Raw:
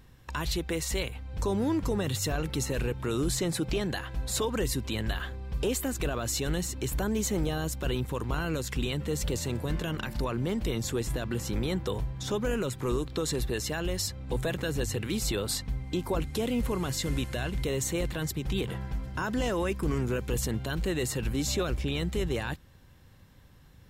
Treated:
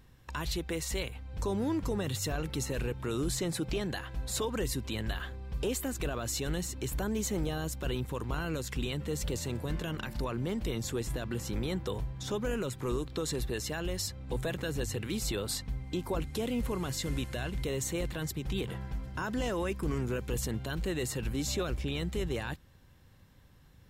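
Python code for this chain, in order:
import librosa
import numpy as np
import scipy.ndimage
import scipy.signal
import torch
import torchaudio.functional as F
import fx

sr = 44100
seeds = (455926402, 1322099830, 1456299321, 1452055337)

y = x * librosa.db_to_amplitude(-3.5)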